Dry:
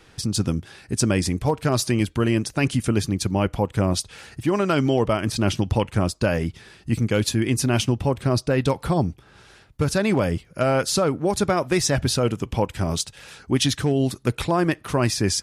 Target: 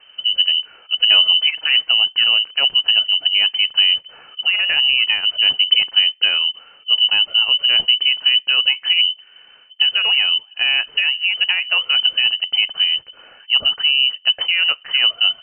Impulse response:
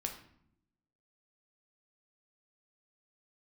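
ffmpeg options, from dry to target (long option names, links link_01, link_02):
-filter_complex "[0:a]lowshelf=frequency=220:gain=11.5,lowpass=frequency=2600:width_type=q:width=0.5098,lowpass=frequency=2600:width_type=q:width=0.6013,lowpass=frequency=2600:width_type=q:width=0.9,lowpass=frequency=2600:width_type=q:width=2.563,afreqshift=-3100,asettb=1/sr,asplit=3[link_01][link_02][link_03];[link_01]atrim=end=1.094[link_04];[link_02]atrim=start=1.09:end=1.91,asetpts=PTS-STARTPTS,afade=type=in:duration=0.004:curve=qsin,afade=type=out:start_time=0.816:duration=0.004:curve=qsin,aecho=1:1:6.3:0.91,atrim=end_sample=36162[link_05];[link_03]atrim=start=1.906[link_06];[link_04][link_05]acrossfade=duration=0.004:curve1=hsin:curve2=qsin[link_07];[link_07][link_06]acrossfade=duration=0.004:curve1=qsin:curve2=hsin,asettb=1/sr,asplit=3[link_08][link_09][link_10];[link_08]atrim=end=2.944[link_11];[link_09]atrim=start=2.94:end=3.38,asetpts=PTS-STARTPTS,afade=type=in:duration=0.004:curve=qsin,afade=type=out:start_time=0.436:duration=0.004:curve=qsin,equalizer=frequency=300:width_type=o:width=0.77:gain=6[link_12];[link_10]atrim=start=3.376[link_13];[link_11][link_12]acrossfade=duration=0.004:curve1=hsin:curve2=qsin[link_14];[link_14][link_13]acrossfade=duration=0.004:curve1=qsin:curve2=hsin,volume=-1dB"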